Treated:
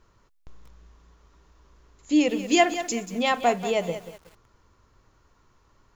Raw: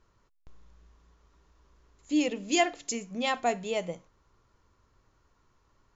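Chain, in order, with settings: dynamic EQ 5900 Hz, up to -4 dB, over -43 dBFS, Q 0.72; lo-fi delay 0.185 s, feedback 35%, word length 8-bit, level -11.5 dB; gain +6 dB

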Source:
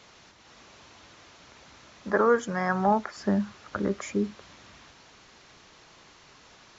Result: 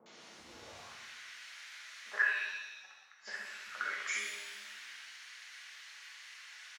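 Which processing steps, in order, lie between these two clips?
high-pass sweep 62 Hz -> 1800 Hz, 0.24–0.91; 2.16–3.39 flipped gate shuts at -26 dBFS, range -41 dB; three bands offset in time mids, highs, lows 60/390 ms, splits 170/980 Hz; shimmer reverb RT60 1.2 s, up +7 st, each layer -8 dB, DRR -3 dB; gain -4 dB

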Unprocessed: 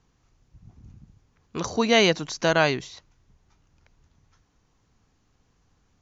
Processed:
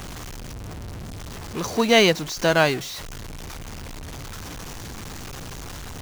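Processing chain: zero-crossing step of -25 dBFS; upward expander 1.5:1, over -28 dBFS; gain +2 dB

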